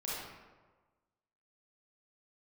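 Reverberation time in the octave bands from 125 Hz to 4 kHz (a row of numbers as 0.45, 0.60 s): 1.4, 1.3, 1.4, 1.3, 1.0, 0.75 s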